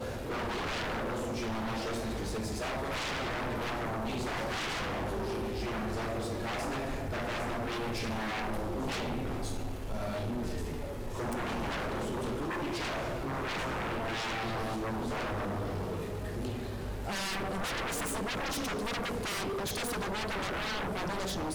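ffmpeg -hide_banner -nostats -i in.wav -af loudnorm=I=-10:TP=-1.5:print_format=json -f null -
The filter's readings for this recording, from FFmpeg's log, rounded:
"input_i" : "-34.8",
"input_tp" : "-28.2",
"input_lra" : "1.6",
"input_thresh" : "-44.8",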